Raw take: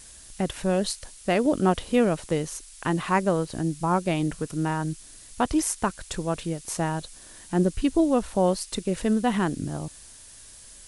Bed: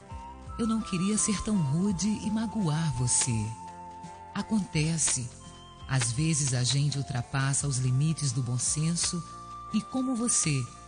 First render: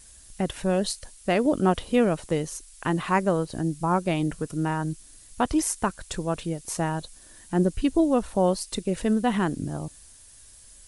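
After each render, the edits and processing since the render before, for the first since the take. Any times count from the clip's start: noise reduction 6 dB, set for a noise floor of -48 dBFS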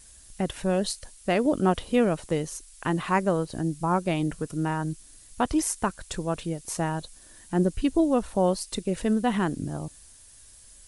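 trim -1 dB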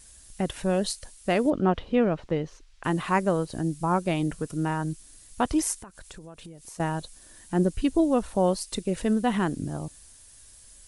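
1.50–2.84 s: distance through air 220 m; 5.81–6.80 s: compression 10:1, threshold -40 dBFS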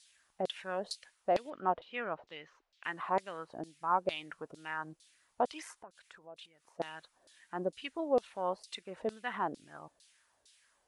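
LFO band-pass saw down 2.2 Hz 520–4300 Hz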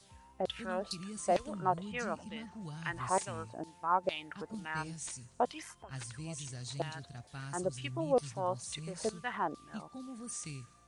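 add bed -16.5 dB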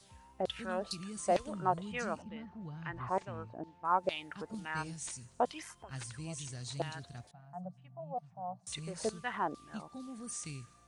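2.22–3.85 s: tape spacing loss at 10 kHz 30 dB; 7.31–8.67 s: two resonant band-passes 360 Hz, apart 2 oct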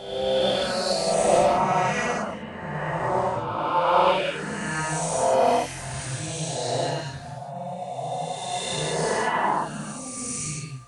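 reverse spectral sustain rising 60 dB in 2.16 s; gated-style reverb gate 230 ms flat, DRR -6.5 dB

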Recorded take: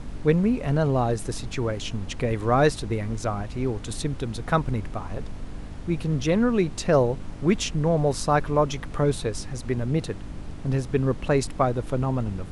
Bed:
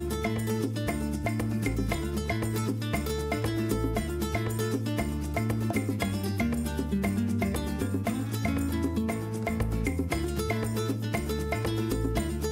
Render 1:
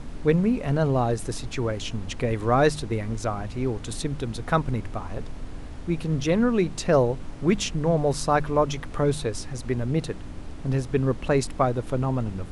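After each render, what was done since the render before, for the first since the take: de-hum 50 Hz, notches 4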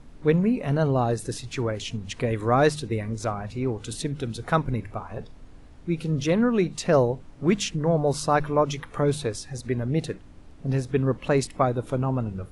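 noise print and reduce 11 dB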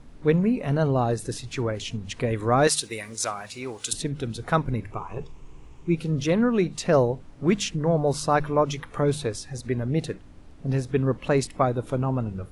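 2.67–3.93 s: tilt EQ +4.5 dB/octave; 4.92–5.95 s: rippled EQ curve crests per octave 0.72, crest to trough 10 dB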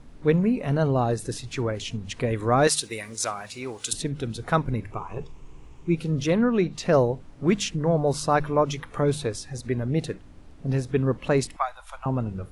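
6.37–6.83 s: peaking EQ 9.2 kHz -8.5 dB; 11.56–12.06 s: inverse Chebyshev band-stop 100–460 Hz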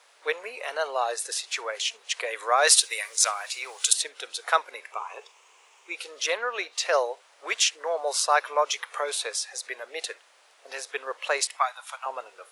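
steep high-pass 480 Hz 36 dB/octave; tilt shelf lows -8 dB, about 810 Hz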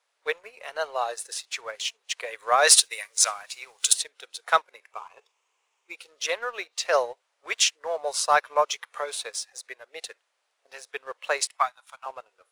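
waveshaping leveller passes 1; upward expansion 1.5:1, over -42 dBFS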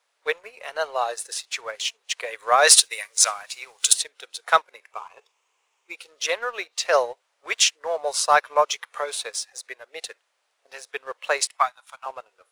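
trim +3 dB; peak limiter -1 dBFS, peak gain reduction 1.5 dB

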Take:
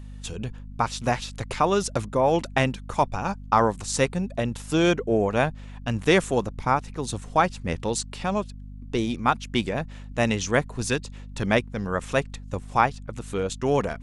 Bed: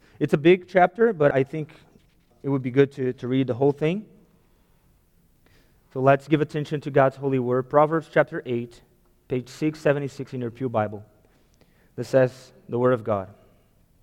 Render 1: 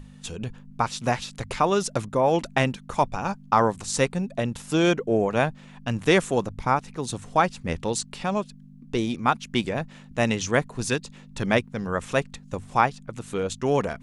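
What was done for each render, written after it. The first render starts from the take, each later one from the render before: hum notches 50/100 Hz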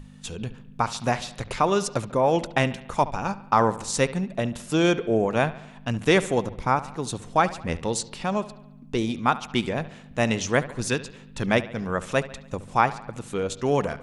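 bucket-brigade echo 71 ms, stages 2048, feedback 55%, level -16.5 dB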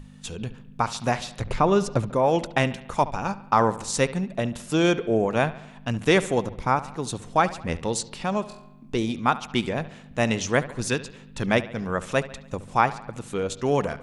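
1.41–2.13 s: tilt EQ -2 dB/octave; 8.45–8.95 s: flutter echo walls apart 3.9 m, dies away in 0.29 s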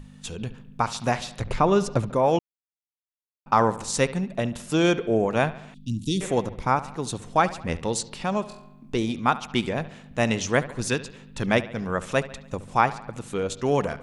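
2.39–3.46 s: mute; 5.74–6.21 s: elliptic band-stop 290–3700 Hz, stop band 50 dB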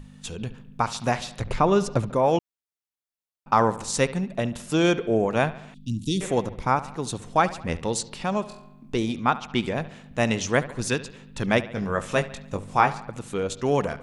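9.23–9.64 s: distance through air 62 m; 11.75–13.04 s: doubling 20 ms -6.5 dB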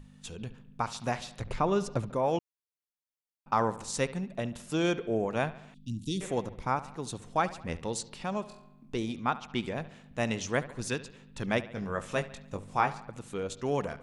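trim -7.5 dB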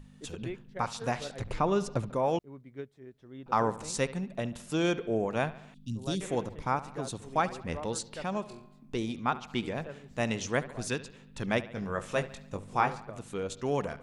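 add bed -23.5 dB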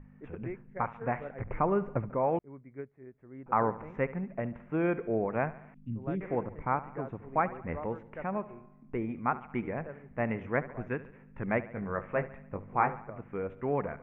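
elliptic low-pass 2.2 kHz, stop band 50 dB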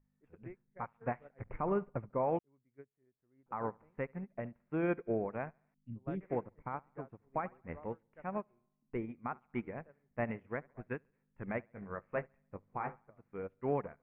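peak limiter -22.5 dBFS, peak gain reduction 9.5 dB; upward expansion 2.5:1, over -45 dBFS

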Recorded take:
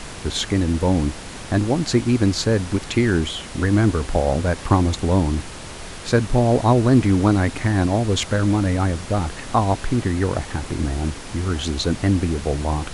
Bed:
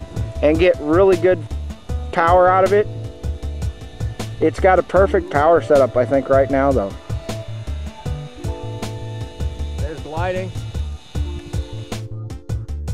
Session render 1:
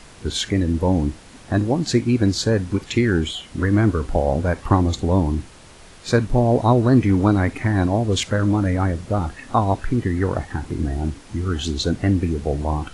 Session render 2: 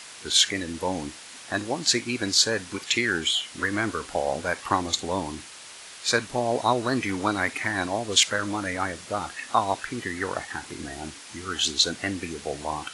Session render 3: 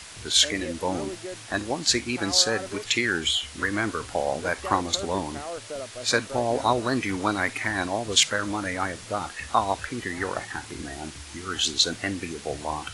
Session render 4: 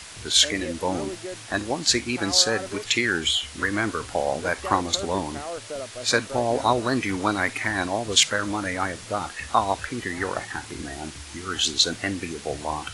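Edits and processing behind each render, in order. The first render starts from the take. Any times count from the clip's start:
noise print and reduce 10 dB
high-pass 420 Hz 6 dB/octave; tilt shelf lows -7 dB, about 1.1 kHz
add bed -22.5 dB
trim +1.5 dB

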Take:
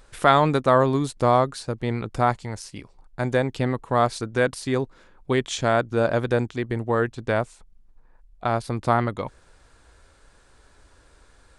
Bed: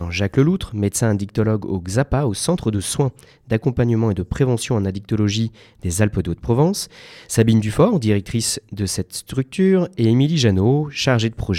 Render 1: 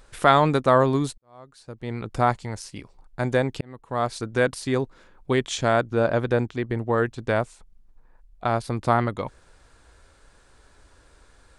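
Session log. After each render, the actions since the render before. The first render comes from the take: 1.18–2.16 s: fade in quadratic; 3.61–4.31 s: fade in; 5.90–6.98 s: treble shelf 5.5 kHz -8 dB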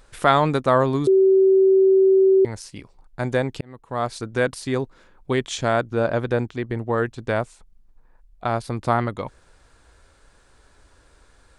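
1.07–2.45 s: bleep 383 Hz -11.5 dBFS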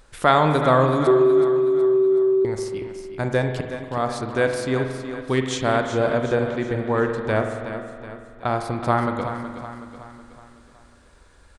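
on a send: feedback delay 372 ms, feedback 49%, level -10 dB; on the sum: spring tank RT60 1.8 s, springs 46 ms, chirp 30 ms, DRR 5.5 dB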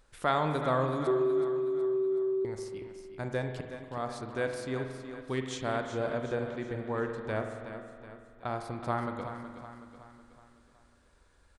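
trim -11.5 dB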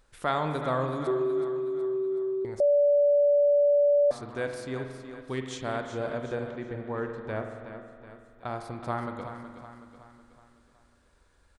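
2.60–4.11 s: bleep 578 Hz -18 dBFS; 6.51–8.07 s: treble shelf 5 kHz -10.5 dB

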